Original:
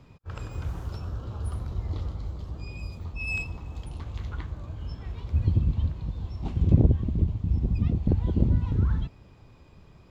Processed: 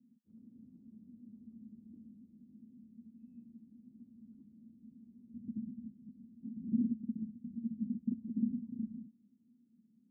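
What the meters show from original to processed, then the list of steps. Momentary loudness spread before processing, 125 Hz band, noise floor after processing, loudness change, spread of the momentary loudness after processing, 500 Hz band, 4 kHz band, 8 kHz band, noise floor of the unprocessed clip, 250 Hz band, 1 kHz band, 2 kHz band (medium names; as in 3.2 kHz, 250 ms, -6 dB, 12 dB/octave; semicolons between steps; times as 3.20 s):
14 LU, -27.0 dB, -70 dBFS, -11.0 dB, 21 LU, under -25 dB, under -30 dB, no reading, -53 dBFS, -5.5 dB, under -40 dB, under -40 dB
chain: Butterworth band-pass 230 Hz, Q 5.4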